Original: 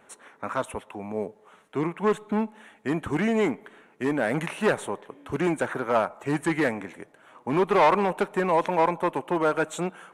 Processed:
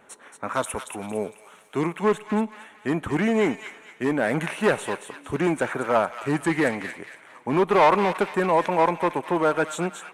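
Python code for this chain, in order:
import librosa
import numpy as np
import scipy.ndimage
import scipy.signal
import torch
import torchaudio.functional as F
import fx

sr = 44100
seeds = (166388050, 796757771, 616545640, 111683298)

y = fx.high_shelf(x, sr, hz=3700.0, db=10.0, at=(0.54, 2.0))
y = fx.echo_wet_highpass(y, sr, ms=228, feedback_pct=38, hz=1700.0, wet_db=-6)
y = F.gain(torch.from_numpy(y), 2.0).numpy()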